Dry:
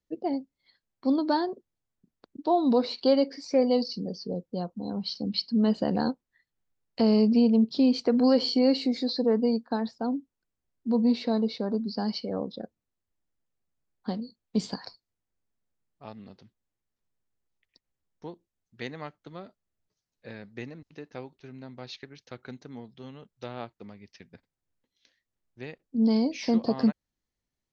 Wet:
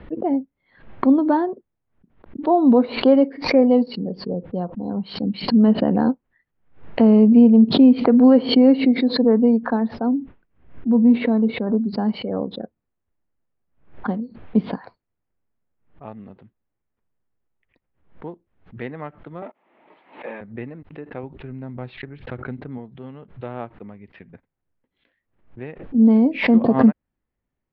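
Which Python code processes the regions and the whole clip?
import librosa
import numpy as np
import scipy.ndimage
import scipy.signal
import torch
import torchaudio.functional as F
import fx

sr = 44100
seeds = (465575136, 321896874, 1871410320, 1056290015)

y = fx.chain(x, sr, fx.lowpass(hz=3800.0, slope=12),
    fx.peak_eq(hz=720.0, db=-3.5, octaves=2.1),
    fx.sustainer(db_per_s=150.0), at=(10.08, 11.67))
y = fx.chain(y, sr, fx.leveller(passes=3),
    fx.cabinet(low_hz=290.0, low_slope=24, high_hz=3600.0, hz=(430.0, 890.0, 1500.0, 2200.0), db=(-6, 7, -6, 4)),
    fx.pre_swell(db_per_s=53.0), at=(19.42, 20.41))
y = fx.chain(y, sr, fx.low_shelf(hz=140.0, db=11.0),
    fx.pre_swell(db_per_s=74.0), at=(21.23, 22.78))
y = scipy.signal.sosfilt(scipy.signal.bessel(8, 1700.0, 'lowpass', norm='mag', fs=sr, output='sos'), y)
y = fx.dynamic_eq(y, sr, hz=250.0, q=2.3, threshold_db=-33.0, ratio=4.0, max_db=4)
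y = fx.pre_swell(y, sr, db_per_s=130.0)
y = y * librosa.db_to_amplitude(6.5)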